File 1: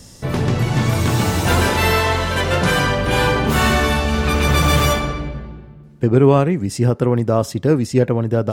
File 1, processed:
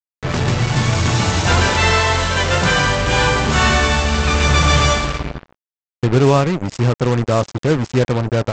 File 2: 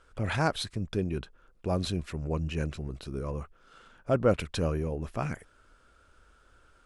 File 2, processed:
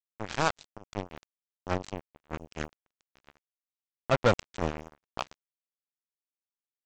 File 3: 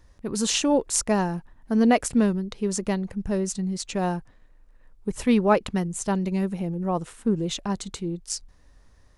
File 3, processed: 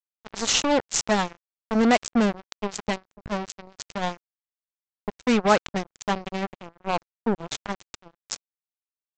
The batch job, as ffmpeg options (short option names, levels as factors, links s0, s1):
-af "equalizer=f=290:w=0.61:g=-5.5,aresample=16000,acrusher=bits=3:mix=0:aa=0.5,aresample=44100,volume=1.41"